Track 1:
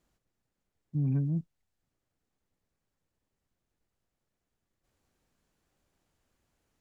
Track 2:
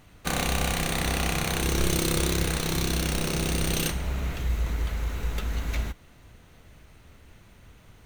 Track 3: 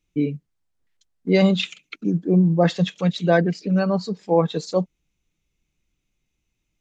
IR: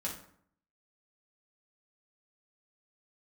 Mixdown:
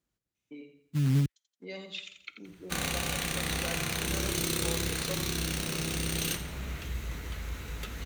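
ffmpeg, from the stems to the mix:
-filter_complex "[0:a]dynaudnorm=f=700:g=3:m=5.01,acrusher=bits=4:mode=log:mix=0:aa=0.000001,volume=0.447,asplit=3[s0][s1][s2];[s0]atrim=end=1.26,asetpts=PTS-STARTPTS,afade=t=out:st=1.256:d=0.004:c=hsin[s3];[s1]atrim=start=1.26:end=1.81,asetpts=PTS-STARTPTS,volume=0[s4];[s2]atrim=start=1.81,asetpts=PTS-STARTPTS,afade=t=in:d=0.004:c=hsin[s5];[s3][s4][s5]concat=n=3:v=0:a=1[s6];[1:a]lowshelf=f=450:g=-4,flanger=delay=6.4:depth=6.9:regen=-63:speed=1.5:shape=triangular,adelay=2450,volume=1.19,asplit=2[s7][s8];[s8]volume=0.15[s9];[2:a]acompressor=threshold=0.0398:ratio=3,highpass=540,adelay=350,volume=0.422,asplit=3[s10][s11][s12];[s11]volume=0.266[s13];[s12]volume=0.422[s14];[3:a]atrim=start_sample=2205[s15];[s13][s15]afir=irnorm=-1:irlink=0[s16];[s9][s14]amix=inputs=2:normalize=0,aecho=0:1:86|172|258|344|430:1|0.39|0.152|0.0593|0.0231[s17];[s6][s7][s10][s16][s17]amix=inputs=5:normalize=0,highpass=45,equalizer=f=770:t=o:w=1.3:g=-5.5"

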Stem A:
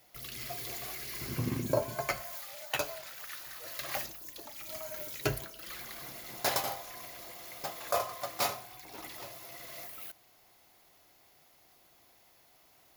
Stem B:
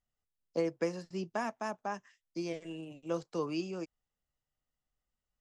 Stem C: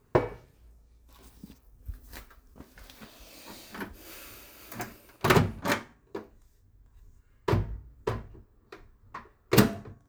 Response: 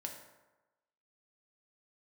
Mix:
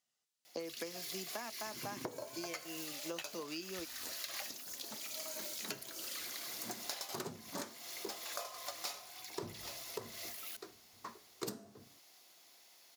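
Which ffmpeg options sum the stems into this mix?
-filter_complex "[0:a]adelay=450,volume=0.562[s0];[1:a]volume=0.944[s1];[2:a]equalizer=f=2400:t=o:w=1.9:g=-14.5,adelay=1900,volume=0.841[s2];[s0][s1][s2]amix=inputs=3:normalize=0,highpass=210,equalizer=f=5600:w=0.46:g=11.5,acompressor=threshold=0.0112:ratio=16"

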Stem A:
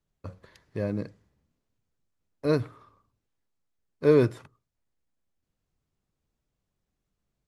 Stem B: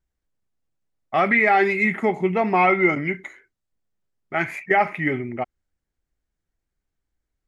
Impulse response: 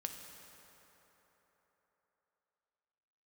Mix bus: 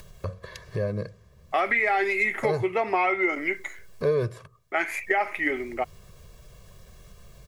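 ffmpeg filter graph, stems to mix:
-filter_complex "[0:a]aecho=1:1:1.8:0.85,acompressor=mode=upward:threshold=0.0631:ratio=2.5,volume=0.944[s0];[1:a]highpass=f=310:w=0.5412,highpass=f=310:w=1.3066,highshelf=f=5200:g=10,adelay=400,volume=1[s1];[s0][s1]amix=inputs=2:normalize=0,acompressor=threshold=0.0891:ratio=4"

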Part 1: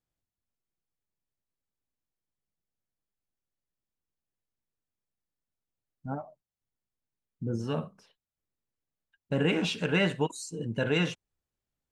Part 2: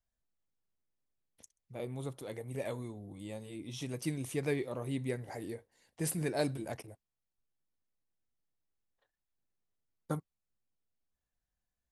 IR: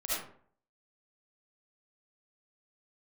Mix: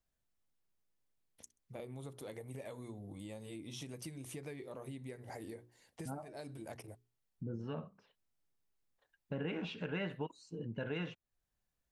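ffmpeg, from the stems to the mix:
-filter_complex "[0:a]lowpass=2900,volume=0.596,asplit=2[s0][s1];[1:a]bandreject=f=60:t=h:w=6,bandreject=f=120:t=h:w=6,bandreject=f=180:t=h:w=6,bandreject=f=240:t=h:w=6,bandreject=f=300:t=h:w=6,bandreject=f=360:t=h:w=6,bandreject=f=420:t=h:w=6,acompressor=threshold=0.00631:ratio=6,volume=1.19[s2];[s1]apad=whole_len=525240[s3];[s2][s3]sidechaincompress=threshold=0.00794:ratio=8:attack=5.1:release=390[s4];[s0][s4]amix=inputs=2:normalize=0,acompressor=threshold=0.00794:ratio=2"

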